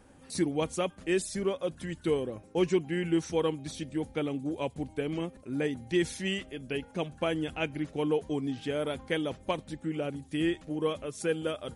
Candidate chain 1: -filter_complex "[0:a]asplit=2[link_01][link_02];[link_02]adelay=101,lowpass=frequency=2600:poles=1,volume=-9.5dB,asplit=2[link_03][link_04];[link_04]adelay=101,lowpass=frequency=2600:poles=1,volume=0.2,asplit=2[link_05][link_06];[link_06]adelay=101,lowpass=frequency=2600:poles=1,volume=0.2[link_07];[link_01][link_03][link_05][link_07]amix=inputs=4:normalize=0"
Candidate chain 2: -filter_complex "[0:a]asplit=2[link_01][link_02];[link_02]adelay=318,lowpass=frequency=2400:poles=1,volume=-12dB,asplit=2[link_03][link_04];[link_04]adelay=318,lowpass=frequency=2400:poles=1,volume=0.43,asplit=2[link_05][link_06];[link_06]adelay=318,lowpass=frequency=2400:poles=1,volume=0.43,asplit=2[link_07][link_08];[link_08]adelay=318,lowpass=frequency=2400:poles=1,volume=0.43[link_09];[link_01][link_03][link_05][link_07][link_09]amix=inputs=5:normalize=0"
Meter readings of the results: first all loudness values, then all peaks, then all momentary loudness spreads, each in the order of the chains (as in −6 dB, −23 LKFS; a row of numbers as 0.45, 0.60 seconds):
−32.0, −32.0 LKFS; −16.0, −15.0 dBFS; 6, 6 LU